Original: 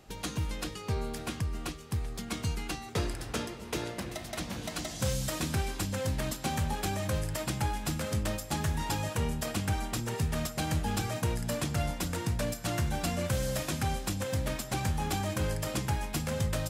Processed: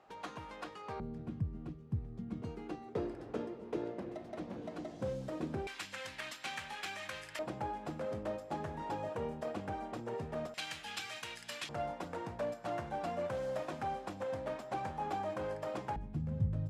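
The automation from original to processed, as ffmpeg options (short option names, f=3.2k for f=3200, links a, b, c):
-af "asetnsamples=n=441:p=0,asendcmd='1 bandpass f 160;2.42 bandpass f 400;5.67 bandpass f 2200;7.39 bandpass f 550;10.54 bandpass f 2800;11.69 bandpass f 690;15.96 bandpass f 120',bandpass=f=920:t=q:w=1.2:csg=0"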